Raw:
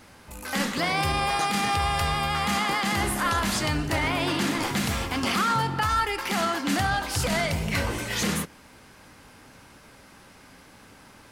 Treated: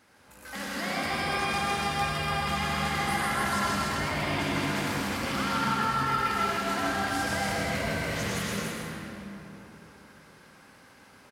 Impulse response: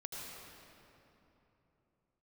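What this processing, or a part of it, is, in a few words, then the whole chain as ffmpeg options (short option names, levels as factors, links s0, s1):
stadium PA: -filter_complex "[0:a]highpass=f=150:p=1,equalizer=f=1600:t=o:w=0.46:g=4,aecho=1:1:157.4|288.6:0.631|0.708[s0];[1:a]atrim=start_sample=2205[s1];[s0][s1]afir=irnorm=-1:irlink=0,volume=0.531"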